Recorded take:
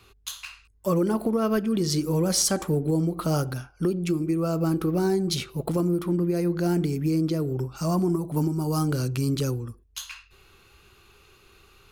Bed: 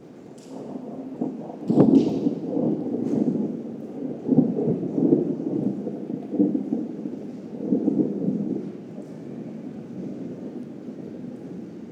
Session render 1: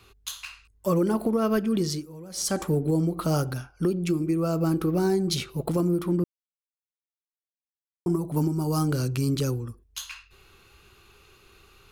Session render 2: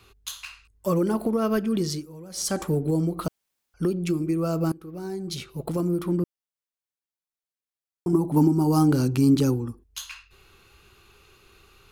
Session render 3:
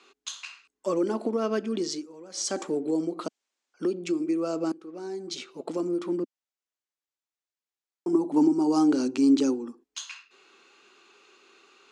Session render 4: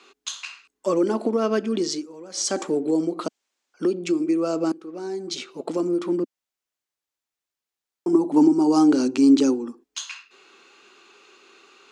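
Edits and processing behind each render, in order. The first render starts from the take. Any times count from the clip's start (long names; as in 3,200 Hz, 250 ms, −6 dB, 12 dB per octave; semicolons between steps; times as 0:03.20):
0:01.80–0:02.59: duck −18.5 dB, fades 0.28 s; 0:06.24–0:08.06: silence
0:03.28–0:03.74: fill with room tone; 0:04.72–0:06.04: fade in linear, from −23 dB; 0:08.13–0:09.84: hollow resonant body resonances 270/830 Hz, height 10 dB, ringing for 20 ms
elliptic band-pass filter 260–7,400 Hz, stop band 40 dB; dynamic equaliser 1,300 Hz, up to −4 dB, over −45 dBFS, Q 1.1
level +5 dB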